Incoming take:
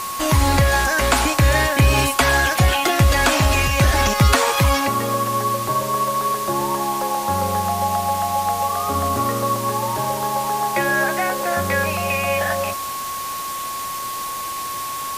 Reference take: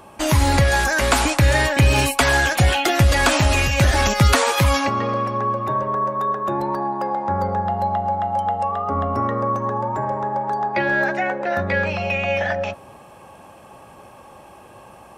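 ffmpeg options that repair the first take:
ffmpeg -i in.wav -af "adeclick=threshold=4,bandreject=frequency=1100:width=30,afwtdn=0.028" out.wav

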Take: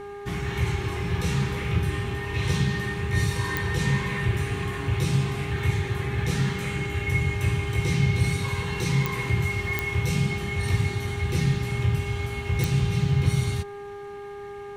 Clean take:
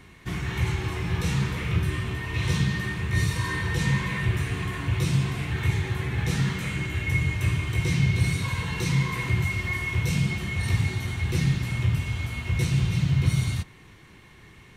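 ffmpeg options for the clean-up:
ffmpeg -i in.wav -af "adeclick=threshold=4,bandreject=frequency=405:width_type=h:width=4,bandreject=frequency=810:width_type=h:width=4,bandreject=frequency=1215:width_type=h:width=4,bandreject=frequency=1620:width_type=h:width=4" out.wav

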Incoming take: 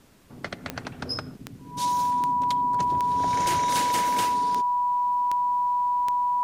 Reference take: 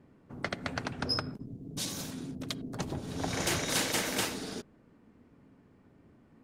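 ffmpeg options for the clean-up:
ffmpeg -i in.wav -af "adeclick=threshold=4,bandreject=frequency=980:width=30,agate=range=-21dB:threshold=-36dB" out.wav

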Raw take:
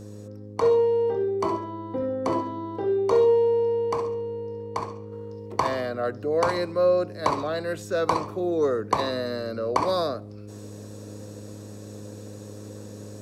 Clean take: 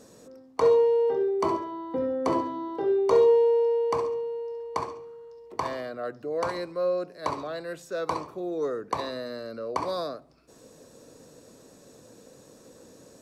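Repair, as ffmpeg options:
ffmpeg -i in.wav -af "bandreject=frequency=103.7:width_type=h:width=4,bandreject=frequency=207.4:width_type=h:width=4,bandreject=frequency=311.1:width_type=h:width=4,bandreject=frequency=414.8:width_type=h:width=4,bandreject=frequency=518.5:width_type=h:width=4,asetnsamples=nb_out_samples=441:pad=0,asendcmd='5.12 volume volume -6dB',volume=0dB" out.wav

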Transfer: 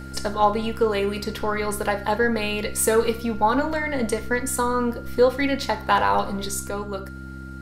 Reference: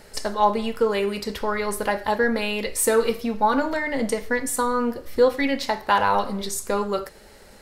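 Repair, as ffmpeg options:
ffmpeg -i in.wav -af "bandreject=frequency=65.9:width_type=h:width=4,bandreject=frequency=131.8:width_type=h:width=4,bandreject=frequency=197.7:width_type=h:width=4,bandreject=frequency=263.6:width_type=h:width=4,bandreject=frequency=329.5:width_type=h:width=4,bandreject=frequency=1400:width=30,asetnsamples=nb_out_samples=441:pad=0,asendcmd='6.69 volume volume 6dB',volume=0dB" out.wav

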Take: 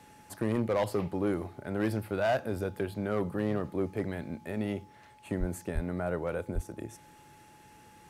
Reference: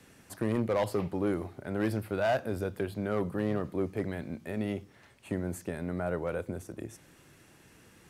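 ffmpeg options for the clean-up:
ffmpeg -i in.wav -filter_complex "[0:a]bandreject=frequency=850:width=30,asplit=3[link_01][link_02][link_03];[link_01]afade=type=out:start_time=5.39:duration=0.02[link_04];[link_02]highpass=frequency=140:width=0.5412,highpass=frequency=140:width=1.3066,afade=type=in:start_time=5.39:duration=0.02,afade=type=out:start_time=5.51:duration=0.02[link_05];[link_03]afade=type=in:start_time=5.51:duration=0.02[link_06];[link_04][link_05][link_06]amix=inputs=3:normalize=0,asplit=3[link_07][link_08][link_09];[link_07]afade=type=out:start_time=5.74:duration=0.02[link_10];[link_08]highpass=frequency=140:width=0.5412,highpass=frequency=140:width=1.3066,afade=type=in:start_time=5.74:duration=0.02,afade=type=out:start_time=5.86:duration=0.02[link_11];[link_09]afade=type=in:start_time=5.86:duration=0.02[link_12];[link_10][link_11][link_12]amix=inputs=3:normalize=0,asplit=3[link_13][link_14][link_15];[link_13]afade=type=out:start_time=6.54:duration=0.02[link_16];[link_14]highpass=frequency=140:width=0.5412,highpass=frequency=140:width=1.3066,afade=type=in:start_time=6.54:duration=0.02,afade=type=out:start_time=6.66:duration=0.02[link_17];[link_15]afade=type=in:start_time=6.66:duration=0.02[link_18];[link_16][link_17][link_18]amix=inputs=3:normalize=0" out.wav

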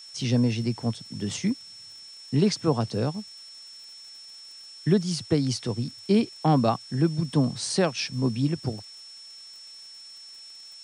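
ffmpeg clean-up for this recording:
ffmpeg -i in.wav -af "adeclick=threshold=4,bandreject=frequency=5400:width=30,afftdn=noise_reduction=24:noise_floor=-46" out.wav

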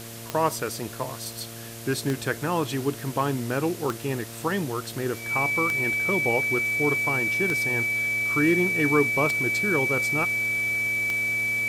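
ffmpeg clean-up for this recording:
ffmpeg -i in.wav -af "adeclick=threshold=4,bandreject=frequency=115.1:width_type=h:width=4,bandreject=frequency=230.2:width_type=h:width=4,bandreject=frequency=345.3:width_type=h:width=4,bandreject=frequency=460.4:width_type=h:width=4,bandreject=frequency=575.5:width_type=h:width=4,bandreject=frequency=690.6:width_type=h:width=4,bandreject=frequency=2300:width=30,afwtdn=0.0089" out.wav

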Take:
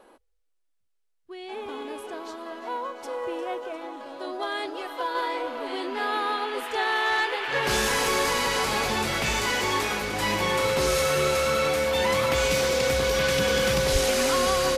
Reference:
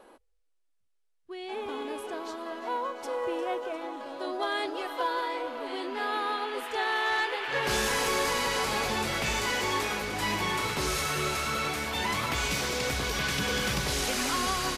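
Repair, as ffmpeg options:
ffmpeg -i in.wav -filter_complex "[0:a]bandreject=frequency=530:width=30,asplit=3[link_01][link_02][link_03];[link_01]afade=type=out:start_time=13.92:duration=0.02[link_04];[link_02]highpass=frequency=140:width=0.5412,highpass=frequency=140:width=1.3066,afade=type=in:start_time=13.92:duration=0.02,afade=type=out:start_time=14.04:duration=0.02[link_05];[link_03]afade=type=in:start_time=14.04:duration=0.02[link_06];[link_04][link_05][link_06]amix=inputs=3:normalize=0,asetnsamples=nb_out_samples=441:pad=0,asendcmd='5.15 volume volume -3.5dB',volume=0dB" out.wav

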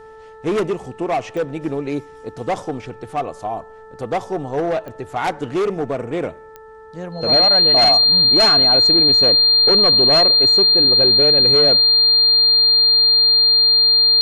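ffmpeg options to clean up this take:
ffmpeg -i in.wav -af "adeclick=threshold=4,bandreject=frequency=439.8:width_type=h:width=4,bandreject=frequency=879.6:width_type=h:width=4,bandreject=frequency=1319.4:width_type=h:width=4,bandreject=frequency=1759.2:width_type=h:width=4,bandreject=frequency=4200:width=30" out.wav

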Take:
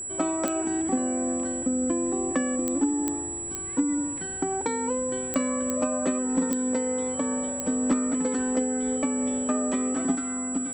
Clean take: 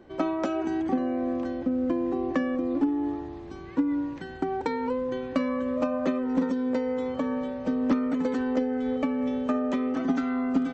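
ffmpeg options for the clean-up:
ffmpeg -i in.wav -af "adeclick=threshold=4,bandreject=frequency=96.1:width_type=h:width=4,bandreject=frequency=192.2:width_type=h:width=4,bandreject=frequency=288.3:width_type=h:width=4,bandreject=frequency=384.4:width_type=h:width=4,bandreject=frequency=7800:width=30,asetnsamples=nb_out_samples=441:pad=0,asendcmd='10.15 volume volume 5dB',volume=0dB" out.wav

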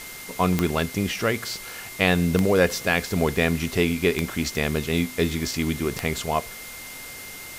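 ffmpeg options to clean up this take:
ffmpeg -i in.wav -af "adeclick=threshold=4,bandreject=frequency=2100:width=30,afwtdn=0.011" out.wav

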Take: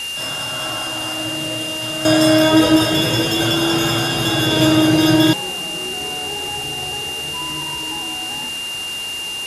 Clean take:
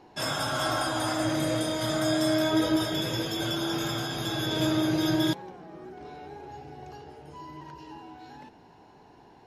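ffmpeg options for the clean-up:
ffmpeg -i in.wav -af "adeclick=threshold=4,bandreject=frequency=2800:width=30,afwtdn=0.028,asetnsamples=nb_out_samples=441:pad=0,asendcmd='2.05 volume volume -12dB',volume=0dB" out.wav

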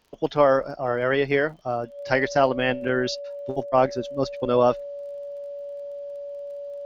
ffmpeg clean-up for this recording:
ffmpeg -i in.wav -af "adeclick=threshold=4,bandreject=frequency=570:width=30" out.wav

